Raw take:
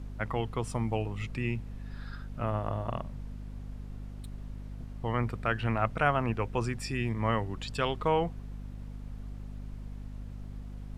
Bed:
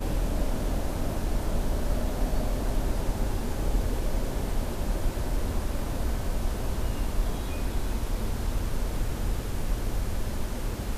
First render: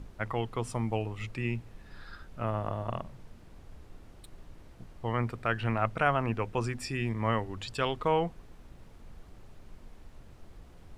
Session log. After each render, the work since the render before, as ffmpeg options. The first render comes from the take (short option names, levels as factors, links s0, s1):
-af "bandreject=f=50:t=h:w=6,bandreject=f=100:t=h:w=6,bandreject=f=150:t=h:w=6,bandreject=f=200:t=h:w=6,bandreject=f=250:t=h:w=6"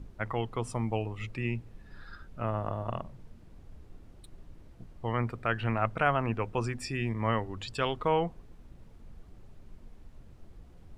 -af "afftdn=nr=6:nf=-53"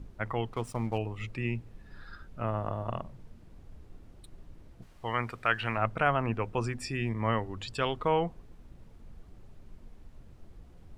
-filter_complex "[0:a]asettb=1/sr,asplit=3[s0][s1][s2];[s0]atrim=end=0.534[s3];[s1]atrim=start=0.53:end=0.98,asetpts=PTS-STARTPTS,afade=t=in:d=0.004:c=qsin,afade=t=out:st=0.446:d=0.004:c=qsin,aeval=exprs='sgn(val(0))*max(abs(val(0))-0.00376,0)':c=same[s4];[s2]atrim=start=0.976[s5];[s3][s4]acrossfade=d=0.004:c1=hsin:c2=qsin[s6];[s6][s5]acrossfade=d=0.004:c1=qsin:c2=hsin,asettb=1/sr,asplit=3[s7][s8][s9];[s7]atrim=end=4.824[s10];[s8]atrim=start=4.82:end=5.77,asetpts=PTS-STARTPTS,afade=t=in:d=0.004:c=qsin,afade=t=out:st=0.946:d=0.004:c=qsin,tiltshelf=f=690:g=-6.5[s11];[s9]atrim=start=5.766[s12];[s10][s11]acrossfade=d=0.004:c1=hsin:c2=qsin[s13];[s13][s12]acrossfade=d=0.004:c1=qsin:c2=hsin"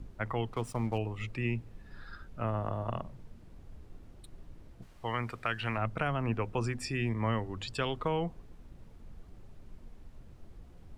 -filter_complex "[0:a]acrossover=split=340|3000[s0][s1][s2];[s1]acompressor=threshold=0.0282:ratio=6[s3];[s0][s3][s2]amix=inputs=3:normalize=0"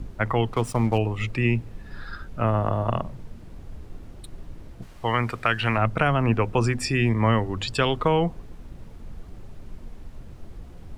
-af "volume=3.35"